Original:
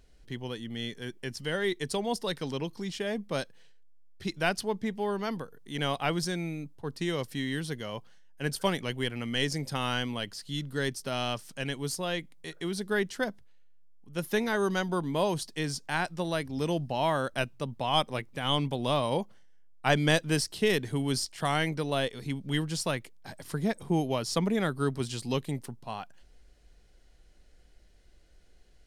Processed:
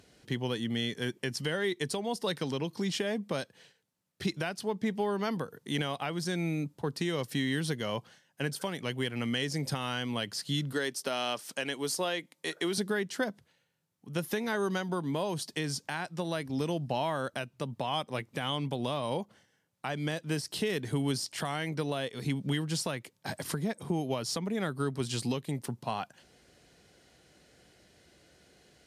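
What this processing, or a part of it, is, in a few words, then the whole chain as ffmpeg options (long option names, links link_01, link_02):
podcast mastering chain: -filter_complex "[0:a]asettb=1/sr,asplit=3[link_01][link_02][link_03];[link_01]atrim=end=10.724[link_04];[link_02]atrim=start=10.72:end=12.78,asetpts=PTS-STARTPTS,afade=type=in:duration=0.004:curve=qsin,afade=type=out:start_time=2.056:duration=0.004:curve=qsin,highpass=290[link_05];[link_03]atrim=start=12.776[link_06];[link_04][link_05]acrossfade=duration=0.004:curve1=hsin:curve2=qsin[link_07];[link_07][link_06]acrossfade=duration=0.004:curve1=qsin:curve2=hsin,highpass=frequency=95:width=0.5412,highpass=frequency=95:width=1.3066,deesser=0.65,acompressor=threshold=-36dB:ratio=3,alimiter=level_in=3.5dB:limit=-24dB:level=0:latency=1:release=418,volume=-3.5dB,volume=8dB" -ar 32000 -c:a libmp3lame -b:a 96k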